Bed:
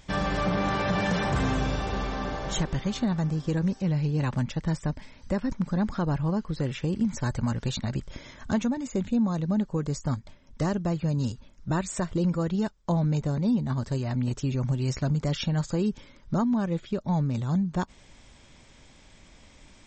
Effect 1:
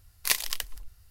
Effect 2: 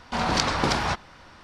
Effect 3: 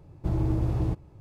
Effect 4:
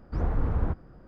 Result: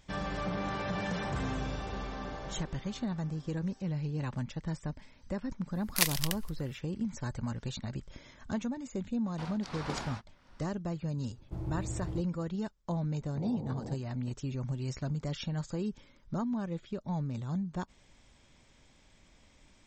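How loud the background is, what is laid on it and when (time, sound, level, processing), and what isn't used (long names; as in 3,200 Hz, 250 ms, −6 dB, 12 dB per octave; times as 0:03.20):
bed −8.5 dB
0:05.71: mix in 1 −2 dB, fades 0.05 s
0:09.26: mix in 2 −14 dB + tremolo along a rectified sine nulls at 1.5 Hz
0:11.27: mix in 3 −11.5 dB
0:13.22: mix in 4 −7 dB + Chebyshev band-pass filter 110–850 Hz, order 4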